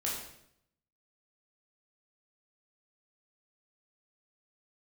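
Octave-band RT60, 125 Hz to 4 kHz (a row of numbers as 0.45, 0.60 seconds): 0.95, 0.85, 0.75, 0.65, 0.65, 0.65 seconds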